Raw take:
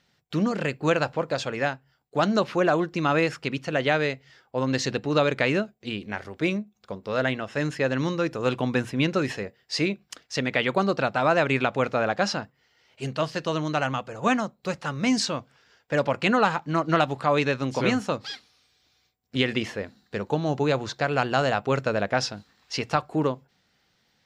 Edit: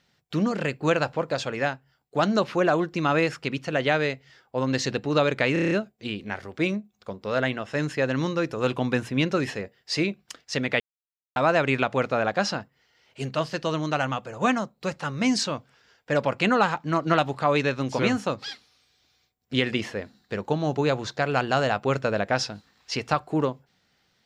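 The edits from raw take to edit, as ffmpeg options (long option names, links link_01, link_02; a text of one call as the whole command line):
ffmpeg -i in.wav -filter_complex "[0:a]asplit=9[link_01][link_02][link_03][link_04][link_05][link_06][link_07][link_08][link_09];[link_01]atrim=end=5.562[link_10];[link_02]atrim=start=5.528:end=5.562[link_11];[link_03]atrim=start=5.528:end=5.562[link_12];[link_04]atrim=start=5.528:end=5.562[link_13];[link_05]atrim=start=5.528:end=5.562[link_14];[link_06]atrim=start=5.528:end=5.562[link_15];[link_07]atrim=start=5.528:end=10.62,asetpts=PTS-STARTPTS,afade=type=out:start_time=5.088:duration=0.004:curve=hsin[link_16];[link_08]atrim=start=10.62:end=11.18,asetpts=PTS-STARTPTS,volume=0[link_17];[link_09]atrim=start=11.18,asetpts=PTS-STARTPTS,afade=type=in:duration=0.004:curve=hsin[link_18];[link_10][link_11]acrossfade=duration=0.004:curve1=hsin:curve2=hsin[link_19];[link_19][link_12]acrossfade=duration=0.004:curve1=hsin:curve2=hsin[link_20];[link_20][link_13]acrossfade=duration=0.004:curve1=hsin:curve2=hsin[link_21];[link_21][link_14]acrossfade=duration=0.004:curve1=hsin:curve2=hsin[link_22];[link_22][link_15]acrossfade=duration=0.004:curve1=hsin:curve2=hsin[link_23];[link_16][link_17][link_18]concat=n=3:v=0:a=1[link_24];[link_23][link_24]acrossfade=duration=0.004:curve1=hsin:curve2=hsin" out.wav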